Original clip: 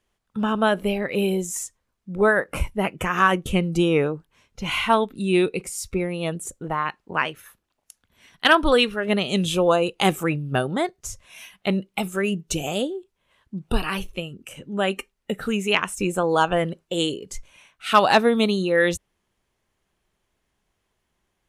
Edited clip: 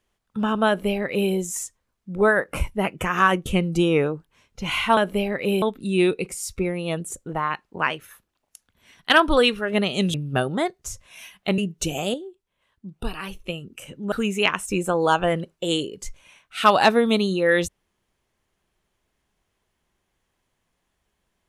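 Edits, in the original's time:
0.67–1.32 copy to 4.97
9.49–10.33 cut
11.77–12.27 cut
12.83–14.15 gain -6.5 dB
14.81–15.41 cut

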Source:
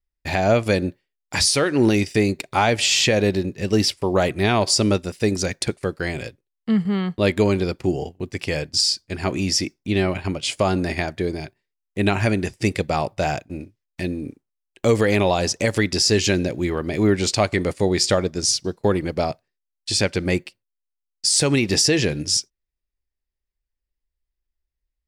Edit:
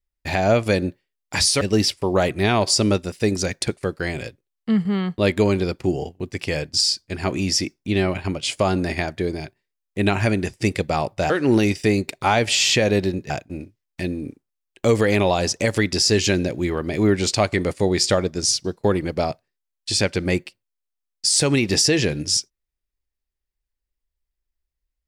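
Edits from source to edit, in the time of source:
1.61–3.61 move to 13.3

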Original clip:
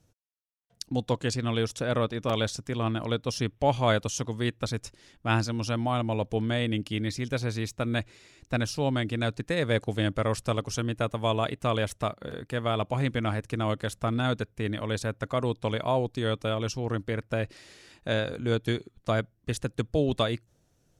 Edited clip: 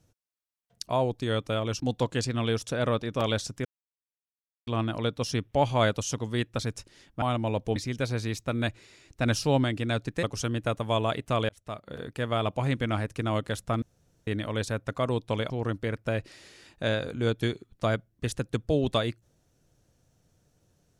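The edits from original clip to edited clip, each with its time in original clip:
2.74 insert silence 1.02 s
5.29–5.87 cut
6.41–7.08 cut
8.58–8.96 gain +3.5 dB
9.55–10.57 cut
11.83–12.39 fade in
14.16–14.61 room tone
15.84–16.75 move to 0.89

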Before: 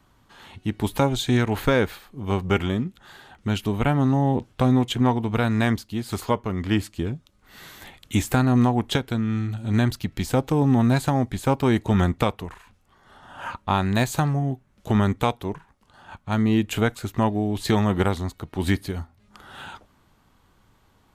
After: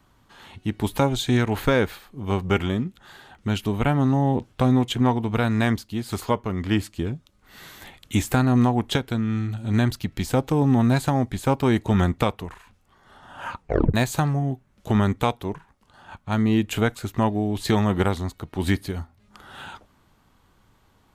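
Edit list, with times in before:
13.57 tape stop 0.37 s

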